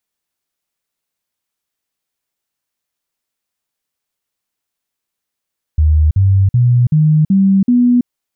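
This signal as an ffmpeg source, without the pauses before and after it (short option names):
-f lavfi -i "aevalsrc='0.447*clip(min(mod(t,0.38),0.33-mod(t,0.38))/0.005,0,1)*sin(2*PI*77*pow(2,floor(t/0.38)/3)*mod(t,0.38))':d=2.28:s=44100"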